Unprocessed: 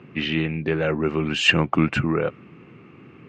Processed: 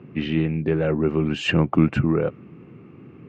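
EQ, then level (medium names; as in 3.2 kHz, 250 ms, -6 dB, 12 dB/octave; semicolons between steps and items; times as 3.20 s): tilt shelf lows +6 dB, about 900 Hz; -2.5 dB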